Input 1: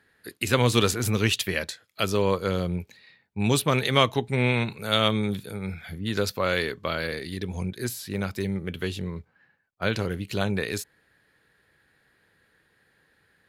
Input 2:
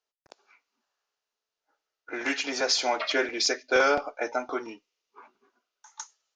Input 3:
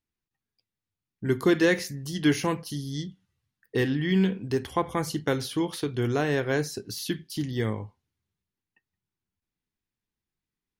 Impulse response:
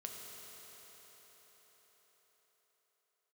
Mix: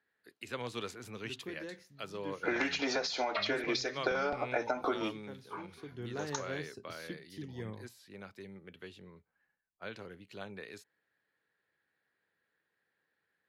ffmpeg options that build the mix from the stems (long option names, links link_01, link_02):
-filter_complex "[0:a]highpass=frequency=360:poles=1,volume=-15dB[link_01];[1:a]acompressor=threshold=-28dB:ratio=6,equalizer=frequency=4000:width_type=o:width=0.29:gain=6,dynaudnorm=framelen=510:gausssize=3:maxgain=10dB,adelay=350,volume=-3dB[link_02];[2:a]highshelf=frequency=8100:gain=7.5,volume=-14.5dB,afade=type=in:start_time=5.57:duration=0.58:silence=0.354813[link_03];[link_01][link_02][link_03]amix=inputs=3:normalize=0,acrossover=split=150[link_04][link_05];[link_05]acompressor=threshold=-28dB:ratio=10[link_06];[link_04][link_06]amix=inputs=2:normalize=0,aemphasis=mode=reproduction:type=50kf"